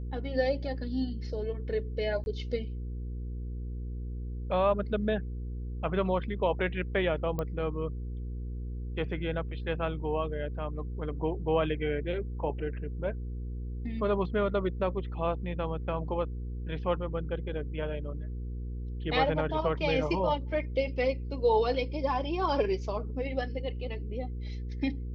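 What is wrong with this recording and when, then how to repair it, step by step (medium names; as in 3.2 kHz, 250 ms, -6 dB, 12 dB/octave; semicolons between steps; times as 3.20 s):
hum 60 Hz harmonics 8 -36 dBFS
2.24–2.26 s: dropout 21 ms
7.39 s: pop -20 dBFS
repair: de-click; de-hum 60 Hz, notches 8; interpolate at 2.24 s, 21 ms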